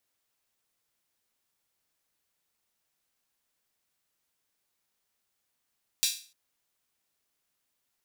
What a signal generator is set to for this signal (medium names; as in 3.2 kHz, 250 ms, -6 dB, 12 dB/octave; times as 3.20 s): open hi-hat length 0.30 s, high-pass 3.7 kHz, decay 0.39 s